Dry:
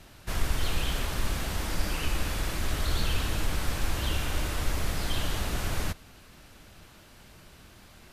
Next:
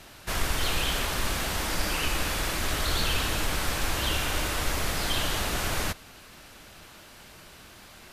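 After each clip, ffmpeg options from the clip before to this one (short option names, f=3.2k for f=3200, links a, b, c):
-af "lowshelf=f=270:g=-8.5,volume=6dB"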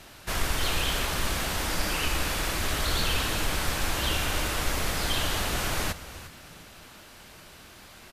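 -filter_complex "[0:a]asplit=4[a][b][c][d];[b]adelay=351,afreqshift=-90,volume=-15dB[e];[c]adelay=702,afreqshift=-180,volume=-24.9dB[f];[d]adelay=1053,afreqshift=-270,volume=-34.8dB[g];[a][e][f][g]amix=inputs=4:normalize=0"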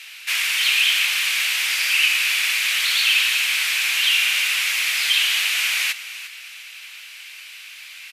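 -filter_complex "[0:a]highpass=f=2.4k:t=q:w=3.5,asplit=2[a][b];[b]asoftclip=type=tanh:threshold=-24dB,volume=-10.5dB[c];[a][c]amix=inputs=2:normalize=0,volume=5dB"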